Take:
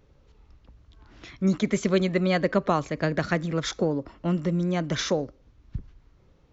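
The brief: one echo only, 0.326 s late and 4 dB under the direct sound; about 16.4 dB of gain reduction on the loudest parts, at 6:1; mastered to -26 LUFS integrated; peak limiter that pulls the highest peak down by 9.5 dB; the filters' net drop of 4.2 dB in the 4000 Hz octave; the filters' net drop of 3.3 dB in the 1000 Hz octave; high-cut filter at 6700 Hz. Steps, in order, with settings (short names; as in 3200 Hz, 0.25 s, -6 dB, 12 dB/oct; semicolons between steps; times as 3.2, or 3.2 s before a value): LPF 6700 Hz; bell 1000 Hz -4.5 dB; bell 4000 Hz -4.5 dB; compressor 6:1, threshold -37 dBFS; limiter -34.5 dBFS; echo 0.326 s -4 dB; gain +17.5 dB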